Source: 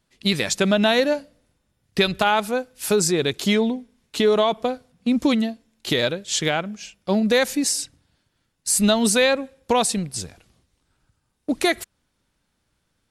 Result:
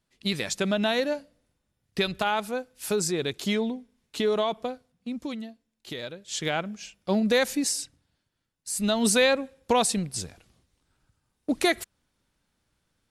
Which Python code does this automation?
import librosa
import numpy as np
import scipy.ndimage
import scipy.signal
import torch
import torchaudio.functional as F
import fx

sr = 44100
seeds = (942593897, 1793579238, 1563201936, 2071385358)

y = fx.gain(x, sr, db=fx.line((4.57, -7.0), (5.24, -15.0), (6.07, -15.0), (6.59, -4.0), (7.55, -4.0), (8.69, -12.0), (9.08, -3.0)))